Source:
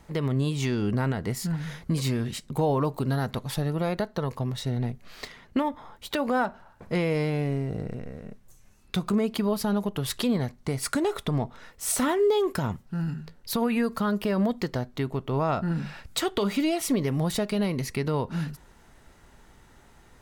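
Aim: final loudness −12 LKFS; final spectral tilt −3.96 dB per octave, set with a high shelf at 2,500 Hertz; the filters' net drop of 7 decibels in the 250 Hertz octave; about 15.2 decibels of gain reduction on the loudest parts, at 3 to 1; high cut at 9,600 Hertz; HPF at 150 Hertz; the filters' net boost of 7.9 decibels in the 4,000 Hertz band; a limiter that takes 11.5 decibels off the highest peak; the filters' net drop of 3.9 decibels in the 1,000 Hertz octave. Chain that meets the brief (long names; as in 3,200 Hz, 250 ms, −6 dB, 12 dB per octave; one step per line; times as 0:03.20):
high-pass filter 150 Hz
low-pass filter 9,600 Hz
parametric band 250 Hz −8 dB
parametric band 1,000 Hz −6 dB
high-shelf EQ 2,500 Hz +7 dB
parametric band 4,000 Hz +4 dB
downward compressor 3 to 1, threshold −38 dBFS
level +28 dB
brickwall limiter 0 dBFS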